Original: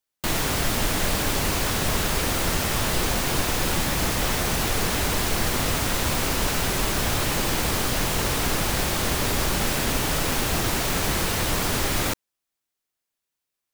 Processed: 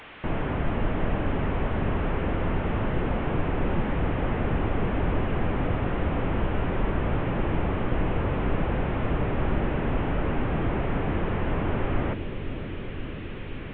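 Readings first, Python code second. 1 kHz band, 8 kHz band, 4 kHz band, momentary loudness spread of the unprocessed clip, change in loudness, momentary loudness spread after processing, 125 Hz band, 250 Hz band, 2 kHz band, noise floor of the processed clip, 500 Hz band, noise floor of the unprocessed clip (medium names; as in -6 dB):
-4.0 dB, under -40 dB, -18.5 dB, 0 LU, -5.0 dB, 5 LU, +1.0 dB, +1.0 dB, -7.5 dB, -35 dBFS, -0.5 dB, -84 dBFS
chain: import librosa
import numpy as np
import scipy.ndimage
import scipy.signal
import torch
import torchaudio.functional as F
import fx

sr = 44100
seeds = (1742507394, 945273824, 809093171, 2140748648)

y = fx.delta_mod(x, sr, bps=16000, step_db=-38.0)
y = fx.echo_bbd(y, sr, ms=522, stages=2048, feedback_pct=81, wet_db=-9.5)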